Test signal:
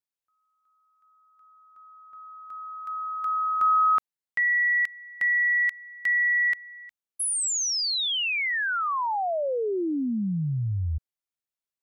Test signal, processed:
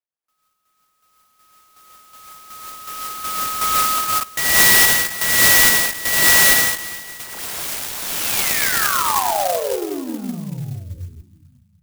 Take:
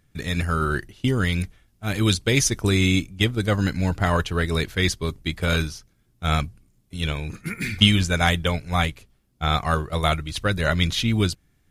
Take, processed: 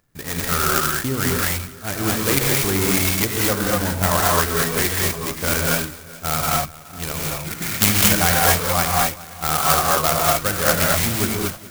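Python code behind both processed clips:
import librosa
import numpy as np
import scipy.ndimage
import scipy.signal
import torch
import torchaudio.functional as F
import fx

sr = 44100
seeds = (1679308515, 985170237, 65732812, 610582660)

p1 = scipy.ndimage.median_filter(x, 9, mode='constant')
p2 = fx.low_shelf(p1, sr, hz=360.0, db=-12.0)
p3 = p2 + fx.echo_feedback(p2, sr, ms=420, feedback_pct=44, wet_db=-19.5, dry=0)
p4 = fx.rev_gated(p3, sr, seeds[0], gate_ms=260, shape='rising', drr_db=-3.5)
p5 = fx.clock_jitter(p4, sr, seeds[1], jitter_ms=0.098)
y = F.gain(torch.from_numpy(p5), 4.5).numpy()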